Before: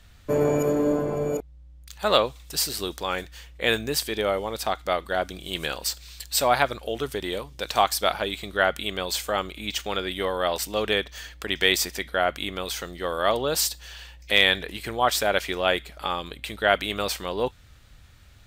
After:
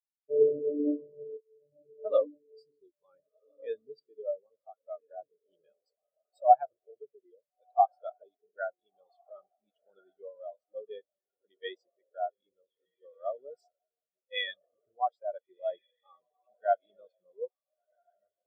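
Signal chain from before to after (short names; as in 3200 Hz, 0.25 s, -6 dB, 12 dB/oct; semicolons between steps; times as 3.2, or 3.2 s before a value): diffused feedback echo 1.425 s, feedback 51%, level -6 dB; spectral expander 4:1; gain -5 dB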